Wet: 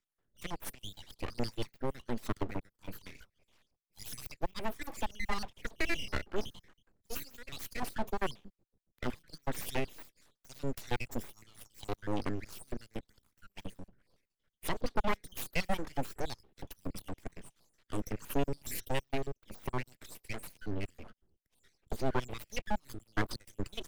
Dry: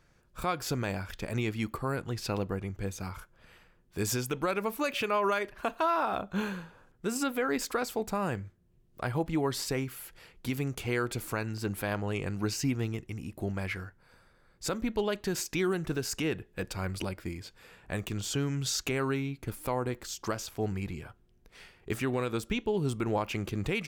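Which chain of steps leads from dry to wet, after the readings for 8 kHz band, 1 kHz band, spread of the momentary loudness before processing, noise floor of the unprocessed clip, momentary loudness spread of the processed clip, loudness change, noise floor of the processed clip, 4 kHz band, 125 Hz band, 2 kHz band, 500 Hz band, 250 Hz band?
-9.5 dB, -6.5 dB, 10 LU, -65 dBFS, 15 LU, -7.0 dB, under -85 dBFS, -6.0 dB, -9.0 dB, -5.5 dB, -8.0 dB, -8.0 dB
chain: random spectral dropouts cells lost 70%; full-wave rectifier; three-band expander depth 40%; gain +2 dB

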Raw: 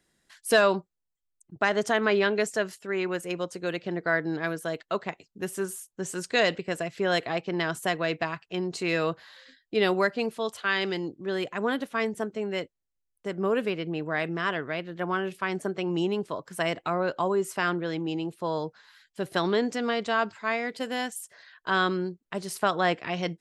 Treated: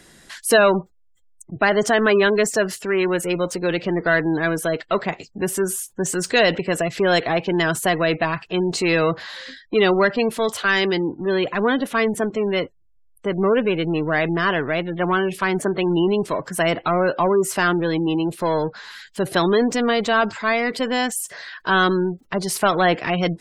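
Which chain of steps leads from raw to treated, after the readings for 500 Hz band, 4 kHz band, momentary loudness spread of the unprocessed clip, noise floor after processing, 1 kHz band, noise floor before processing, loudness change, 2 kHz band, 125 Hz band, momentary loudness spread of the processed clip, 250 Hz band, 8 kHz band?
+8.5 dB, +7.5 dB, 10 LU, -56 dBFS, +7.5 dB, -81 dBFS, +8.0 dB, +7.5 dB, +9.5 dB, 8 LU, +9.0 dB, +11.5 dB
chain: power-law curve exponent 0.7; spectral gate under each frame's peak -30 dB strong; gain +4 dB

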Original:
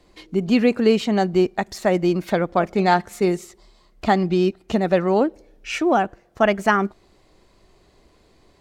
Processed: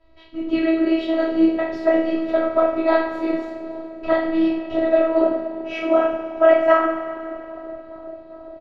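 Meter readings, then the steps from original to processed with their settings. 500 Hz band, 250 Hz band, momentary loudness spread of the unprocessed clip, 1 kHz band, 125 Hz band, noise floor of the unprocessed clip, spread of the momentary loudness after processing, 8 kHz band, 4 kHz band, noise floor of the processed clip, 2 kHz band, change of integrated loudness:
+2.5 dB, +0.5 dB, 9 LU, -2.5 dB, under -15 dB, -57 dBFS, 17 LU, under -20 dB, -6.0 dB, -42 dBFS, -2.0 dB, +1.0 dB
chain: comb 1.6 ms, depth 42%; dark delay 0.406 s, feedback 80%, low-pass 730 Hz, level -17 dB; flange 0.74 Hz, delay 2.4 ms, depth 8.6 ms, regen -79%; two-slope reverb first 0.52 s, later 2.7 s, from -15 dB, DRR -9.5 dB; robotiser 324 Hz; air absorption 350 m; gain -1 dB

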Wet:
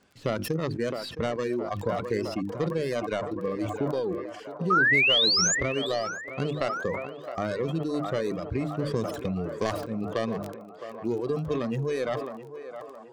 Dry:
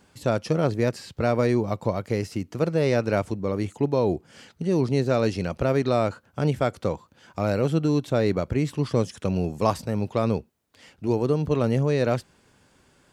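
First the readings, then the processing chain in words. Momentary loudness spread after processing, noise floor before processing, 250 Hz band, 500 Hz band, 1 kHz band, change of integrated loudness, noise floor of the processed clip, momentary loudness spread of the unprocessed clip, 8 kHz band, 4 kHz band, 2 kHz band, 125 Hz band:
15 LU, -61 dBFS, -5.5 dB, -4.5 dB, -1.5 dB, -2.5 dB, -44 dBFS, 6 LU, +11.5 dB, +12.0 dB, +8.0 dB, -8.0 dB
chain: tracing distortion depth 0.39 ms; reverb removal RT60 1.2 s; notches 50/100/150/200/250/300/350 Hz; spectral noise reduction 8 dB; low shelf 110 Hz -7.5 dB; notch 900 Hz, Q 7.8; compressor 5:1, threshold -31 dBFS, peak gain reduction 13.5 dB; painted sound rise, 4.7–5.55, 1200–7400 Hz -25 dBFS; air absorption 55 m; crackle 22/s -48 dBFS; on a send: narrowing echo 0.664 s, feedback 78%, band-pass 850 Hz, level -9 dB; on the sum: sustainer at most 49 dB/s; gain +4.5 dB

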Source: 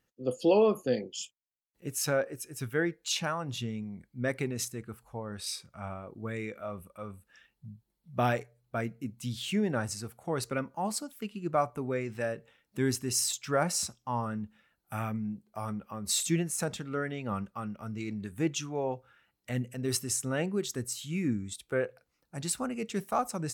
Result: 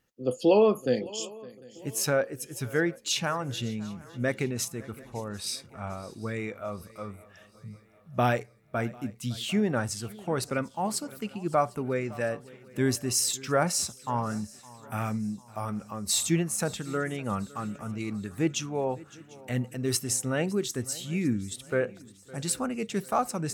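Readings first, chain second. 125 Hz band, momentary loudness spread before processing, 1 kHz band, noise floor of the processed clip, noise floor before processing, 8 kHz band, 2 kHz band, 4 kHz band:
+3.0 dB, 13 LU, +3.0 dB, -55 dBFS, -80 dBFS, +3.0 dB, +3.0 dB, +3.0 dB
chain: swung echo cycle 0.747 s, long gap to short 3:1, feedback 46%, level -21 dB; gain +3 dB

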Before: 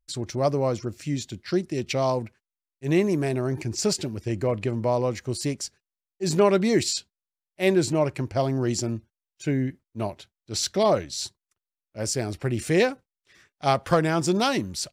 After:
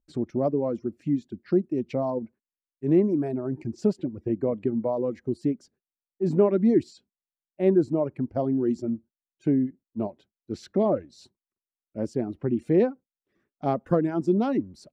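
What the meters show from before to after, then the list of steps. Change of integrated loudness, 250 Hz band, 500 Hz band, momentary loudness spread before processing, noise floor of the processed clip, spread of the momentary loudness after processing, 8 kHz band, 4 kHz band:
-1.0 dB, +2.0 dB, -1.0 dB, 11 LU, under -85 dBFS, 11 LU, under -25 dB, under -20 dB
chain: reverb removal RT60 1.9 s; EQ curve 110 Hz 0 dB, 240 Hz +14 dB, 6100 Hz -19 dB, 13000 Hz -23 dB; in parallel at 0 dB: compressor, threshold -27 dBFS, peak gain reduction 19 dB; on the sum: gain -9 dB

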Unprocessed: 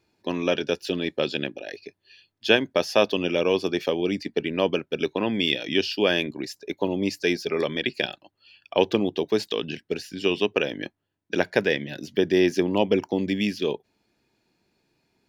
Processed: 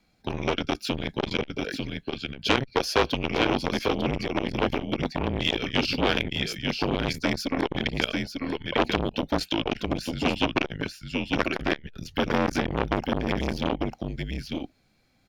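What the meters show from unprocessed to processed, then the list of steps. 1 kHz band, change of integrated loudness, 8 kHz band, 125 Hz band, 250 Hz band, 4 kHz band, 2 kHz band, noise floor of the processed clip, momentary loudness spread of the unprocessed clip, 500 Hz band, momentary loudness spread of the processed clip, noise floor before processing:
+4.0 dB, -2.5 dB, +1.5 dB, +4.0 dB, -1.0 dB, -0.5 dB, -0.5 dB, -65 dBFS, 10 LU, -5.0 dB, 8 LU, -75 dBFS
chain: frequency shift -140 Hz; echo 0.896 s -6 dB; core saturation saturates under 2200 Hz; gain +3 dB

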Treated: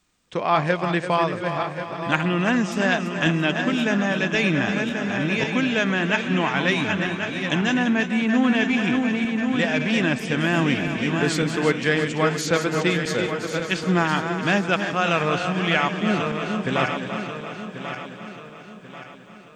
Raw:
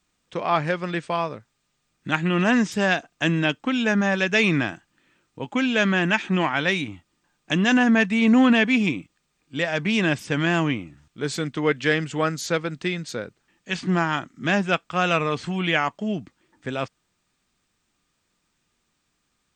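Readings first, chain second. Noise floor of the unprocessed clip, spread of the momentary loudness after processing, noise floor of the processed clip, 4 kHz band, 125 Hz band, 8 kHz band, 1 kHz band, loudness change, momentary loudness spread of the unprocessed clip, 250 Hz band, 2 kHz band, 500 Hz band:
-73 dBFS, 9 LU, -42 dBFS, +1.5 dB, +2.0 dB, +2.5 dB, +2.0 dB, +0.5 dB, 13 LU, +0.5 dB, +1.0 dB, +2.0 dB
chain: regenerating reverse delay 0.544 s, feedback 63%, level -8 dB; vocal rider within 4 dB 0.5 s; split-band echo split 320 Hz, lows 0.232 s, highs 0.338 s, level -9.5 dB

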